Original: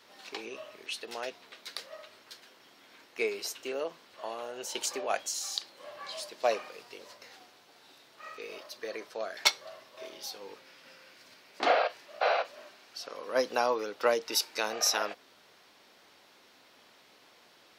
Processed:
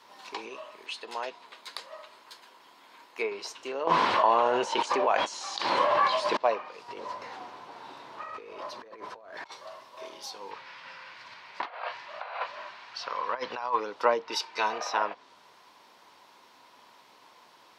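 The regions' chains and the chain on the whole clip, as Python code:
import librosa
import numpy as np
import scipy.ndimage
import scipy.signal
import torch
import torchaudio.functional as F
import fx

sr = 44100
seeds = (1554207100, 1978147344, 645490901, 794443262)

y = fx.chain(x, sr, fx.highpass(hz=200.0, slope=6),
    fx.notch(hz=5700.0, q=9.6), at=(0.46, 3.32))
y = fx.chain(y, sr, fx.lowpass(hz=11000.0, slope=24),
    fx.high_shelf(hz=8700.0, db=11.0),
    fx.env_flatten(amount_pct=100), at=(3.87, 6.37))
y = fx.chain(y, sr, fx.law_mismatch(coded='mu'),
    fx.lowpass(hz=1500.0, slope=6),
    fx.over_compress(threshold_db=-46.0, ratio=-1.0), at=(6.88, 9.52))
y = fx.chain(y, sr, fx.curve_eq(hz=(130.0, 280.0, 1900.0, 4400.0, 11000.0), db=(0, -10, 4, -2, -19)),
    fx.over_compress(threshold_db=-35.0, ratio=-0.5), at=(10.51, 13.8))
y = fx.chain(y, sr, fx.high_shelf(hz=2400.0, db=10.5),
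    fx.notch_comb(f0_hz=280.0), at=(14.31, 14.78))
y = fx.env_lowpass_down(y, sr, base_hz=2800.0, full_db=-28.0)
y = scipy.signal.sosfilt(scipy.signal.butter(2, 54.0, 'highpass', fs=sr, output='sos'), y)
y = fx.peak_eq(y, sr, hz=980.0, db=13.5, octaves=0.39)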